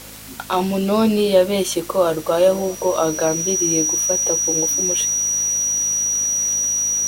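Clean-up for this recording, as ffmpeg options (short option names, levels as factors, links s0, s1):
-af "adeclick=t=4,bandreject=f=53.1:t=h:w=4,bandreject=f=106.2:t=h:w=4,bandreject=f=159.3:t=h:w=4,bandreject=f=212.4:t=h:w=4,bandreject=f=265.5:t=h:w=4,bandreject=f=5800:w=30,afwtdn=0.013"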